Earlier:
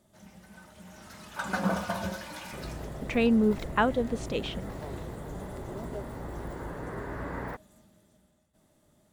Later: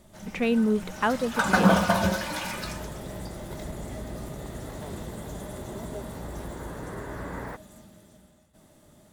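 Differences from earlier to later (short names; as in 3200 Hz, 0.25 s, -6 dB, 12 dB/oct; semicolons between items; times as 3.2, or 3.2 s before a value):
speech: entry -2.75 s; first sound +9.5 dB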